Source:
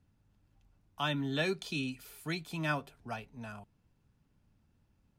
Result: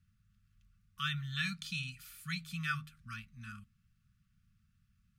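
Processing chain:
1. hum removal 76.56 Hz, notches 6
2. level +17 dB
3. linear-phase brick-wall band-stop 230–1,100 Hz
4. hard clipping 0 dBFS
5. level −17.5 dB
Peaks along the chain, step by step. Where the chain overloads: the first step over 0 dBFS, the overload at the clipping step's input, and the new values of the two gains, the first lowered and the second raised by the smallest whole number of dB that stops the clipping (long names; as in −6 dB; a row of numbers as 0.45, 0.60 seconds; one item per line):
−17.5, −0.5, −2.0, −2.0, −19.5 dBFS
no step passes full scale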